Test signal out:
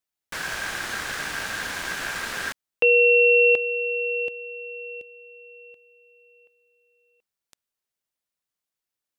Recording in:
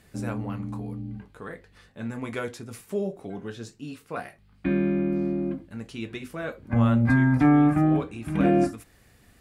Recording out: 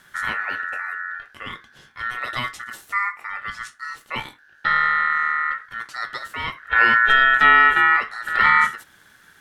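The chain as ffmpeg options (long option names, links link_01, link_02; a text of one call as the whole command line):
ffmpeg -i in.wav -filter_complex "[0:a]acrossover=split=8900[link_01][link_02];[link_02]acompressor=threshold=-51dB:ratio=4:attack=1:release=60[link_03];[link_01][link_03]amix=inputs=2:normalize=0,aeval=exprs='val(0)*sin(2*PI*1600*n/s)':channel_layout=same,volume=7.5dB" out.wav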